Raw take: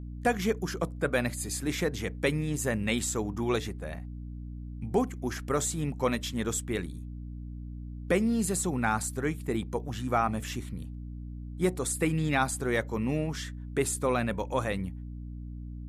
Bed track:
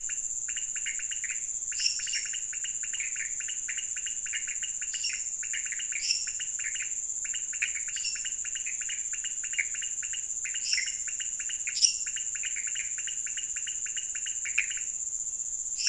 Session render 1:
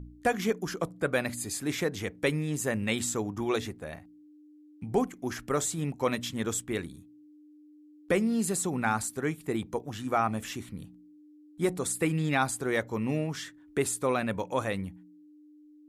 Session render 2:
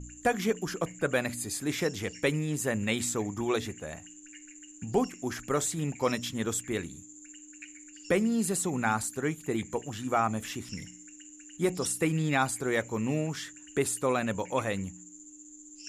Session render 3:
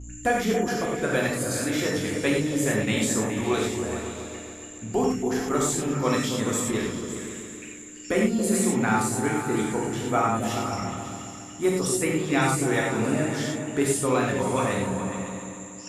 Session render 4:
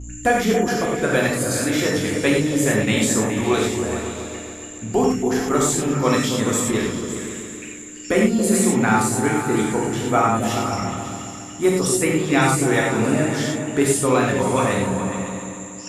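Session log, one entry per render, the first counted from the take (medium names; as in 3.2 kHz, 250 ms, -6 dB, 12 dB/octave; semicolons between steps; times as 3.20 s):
de-hum 60 Hz, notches 4
add bed track -17.5 dB
delay with an opening low-pass 139 ms, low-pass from 200 Hz, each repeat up 2 oct, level -3 dB; gated-style reverb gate 130 ms flat, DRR -2 dB
trim +5.5 dB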